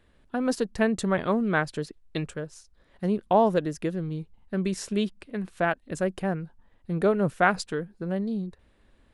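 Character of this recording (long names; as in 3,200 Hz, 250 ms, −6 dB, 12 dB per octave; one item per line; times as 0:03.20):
background noise floor −63 dBFS
spectral slope −5.5 dB per octave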